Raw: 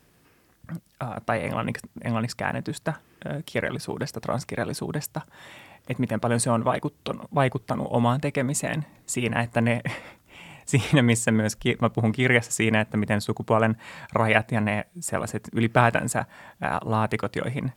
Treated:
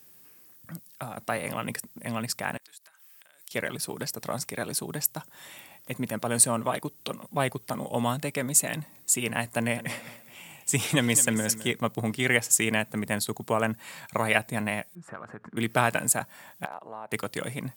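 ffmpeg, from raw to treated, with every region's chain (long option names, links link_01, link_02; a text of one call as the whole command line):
ffmpeg -i in.wav -filter_complex "[0:a]asettb=1/sr,asplit=3[link_01][link_02][link_03];[link_01]atrim=end=2.574[link_04];[link_02]atrim=start=2.57:end=3.51,asetpts=PTS-STARTPTS,afade=type=in:duration=0.004:curve=qsin,afade=type=out:start_time=0.936:duration=0.004:curve=qsin,highpass=1400,acompressor=threshold=-51dB:ratio=10:attack=3.2:release=140:knee=1:detection=peak[link_05];[link_03]atrim=start=3.506[link_06];[link_04][link_05]acrossfade=duration=0.004:curve1=hsin:curve2=qsin[link_07];[link_07][link_06]acrossfade=duration=0.004:curve1=qsin:curve2=hsin,asettb=1/sr,asplit=3[link_08][link_09][link_10];[link_08]atrim=end=9.524[link_11];[link_09]atrim=start=9.52:end=11.7,asetpts=PTS-STARTPTS,afade=type=in:duration=0.004:curve=qsin,afade=type=out:start_time=2.176:duration=0.004:curve=qsin,highpass=50,aecho=1:1:209|418|627:0.178|0.0587|0.0194,atrim=end_sample=96138[link_12];[link_10]atrim=start=11.696[link_13];[link_11][link_12]acrossfade=duration=0.004:curve1=hsin:curve2=qsin[link_14];[link_14][link_13]acrossfade=duration=0.004:curve1=qsin:curve2=hsin,asettb=1/sr,asplit=3[link_15][link_16][link_17];[link_15]atrim=end=14.954[link_18];[link_16]atrim=start=14.95:end=15.57,asetpts=PTS-STARTPTS,afade=type=in:duration=0.004:curve=qsin,afade=type=out:start_time=0.616:duration=0.004:curve=qsin,lowpass=frequency=1400:width_type=q:width=2.9,acompressor=threshold=-31dB:ratio=6:attack=3.2:release=140:knee=1:detection=peak[link_19];[link_17]atrim=start=15.566[link_20];[link_18][link_19]acrossfade=duration=0.004:curve1=hsin:curve2=qsin[link_21];[link_21][link_20]acrossfade=duration=0.004:curve1=qsin:curve2=hsin,asettb=1/sr,asplit=3[link_22][link_23][link_24];[link_22]atrim=end=16.654[link_25];[link_23]atrim=start=16.65:end=17.12,asetpts=PTS-STARTPTS,afade=type=in:duration=0.004:curve=qsin,afade=type=out:start_time=0.466:duration=0.004:curve=qsin,acompressor=threshold=-28dB:ratio=2.5:attack=3.2:release=140:knee=1:detection=peak,bandpass=frequency=720:width_type=q:width=1.3,asoftclip=type=hard:threshold=-22dB[link_26];[link_24]atrim=start=17.116[link_27];[link_25][link_26]acrossfade=duration=0.004:curve1=hsin:curve2=qsin[link_28];[link_28][link_27]acrossfade=duration=0.004:curve1=qsin:curve2=hsin,highpass=120,aemphasis=mode=production:type=75fm,volume=-4.5dB" out.wav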